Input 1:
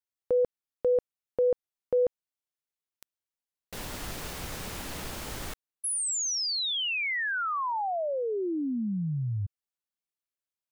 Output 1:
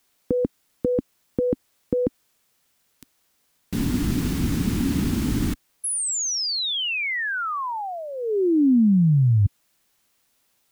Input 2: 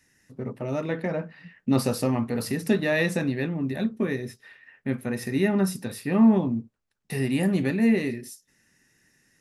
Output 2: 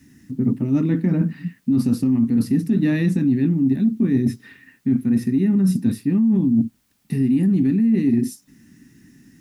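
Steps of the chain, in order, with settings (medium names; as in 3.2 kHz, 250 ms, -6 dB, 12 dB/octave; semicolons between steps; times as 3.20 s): high-pass 45 Hz 6 dB/octave; resonant low shelf 390 Hz +13 dB, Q 3; peak limiter -3 dBFS; reverse; compression 8:1, threshold -20 dBFS; reverse; word length cut 12-bit, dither triangular; trim +4.5 dB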